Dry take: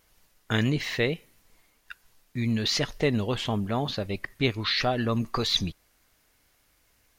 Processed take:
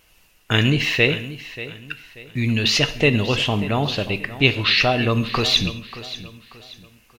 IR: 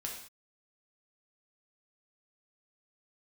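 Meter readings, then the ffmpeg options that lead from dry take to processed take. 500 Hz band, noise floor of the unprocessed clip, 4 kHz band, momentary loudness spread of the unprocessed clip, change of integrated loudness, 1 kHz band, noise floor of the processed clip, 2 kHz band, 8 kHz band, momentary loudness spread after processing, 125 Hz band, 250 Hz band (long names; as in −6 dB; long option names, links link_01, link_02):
+6.5 dB, −67 dBFS, +9.0 dB, 7 LU, +8.5 dB, +6.5 dB, −57 dBFS, +11.5 dB, +6.5 dB, 16 LU, +7.5 dB, +5.5 dB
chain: -filter_complex "[0:a]equalizer=frequency=2700:width=5.1:gain=13,aecho=1:1:585|1170|1755:0.178|0.0622|0.0218,asplit=2[link_01][link_02];[1:a]atrim=start_sample=2205[link_03];[link_02][link_03]afir=irnorm=-1:irlink=0,volume=-6dB[link_04];[link_01][link_04]amix=inputs=2:normalize=0,volume=3.5dB"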